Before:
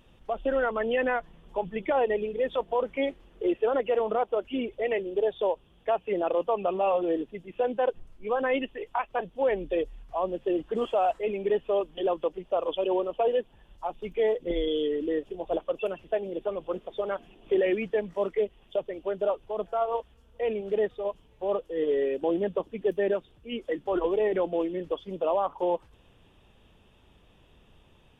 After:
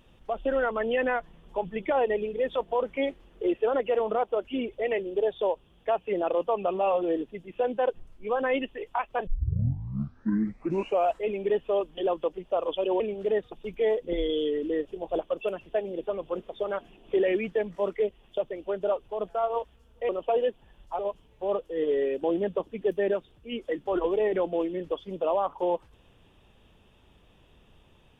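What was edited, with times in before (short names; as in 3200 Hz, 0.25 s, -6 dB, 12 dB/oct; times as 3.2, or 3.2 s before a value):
9.27 tape start 1.86 s
13–13.9 swap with 20.47–20.99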